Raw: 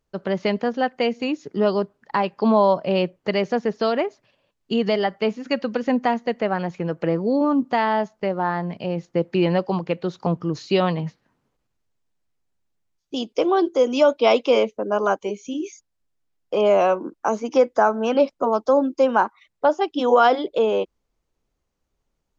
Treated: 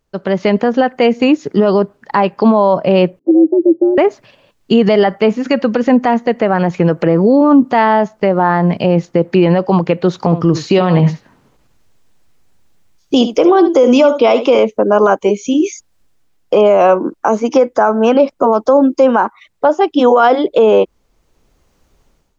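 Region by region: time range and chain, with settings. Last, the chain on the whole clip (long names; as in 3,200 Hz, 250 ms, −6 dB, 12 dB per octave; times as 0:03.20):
0:03.19–0:03.98: parametric band 200 Hz +10 dB 0.57 octaves + frequency shifter +130 Hz + transistor ladder low-pass 380 Hz, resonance 40%
0:10.22–0:14.59: downward compressor 2 to 1, threshold −24 dBFS + single-tap delay 71 ms −12.5 dB
whole clip: automatic gain control gain up to 14 dB; dynamic equaliser 4,500 Hz, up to −7 dB, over −37 dBFS, Q 0.86; boost into a limiter +8 dB; level −1 dB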